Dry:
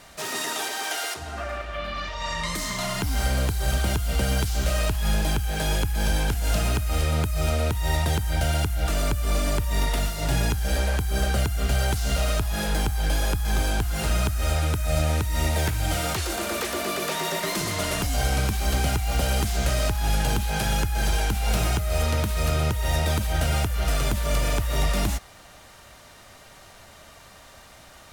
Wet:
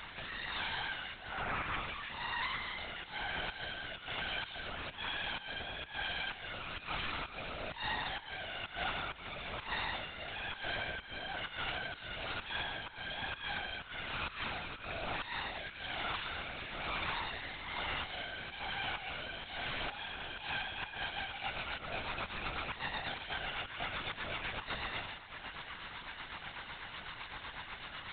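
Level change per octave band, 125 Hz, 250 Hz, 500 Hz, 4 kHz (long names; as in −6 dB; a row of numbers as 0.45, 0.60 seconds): −26.0, −20.0, −16.5, −8.5 decibels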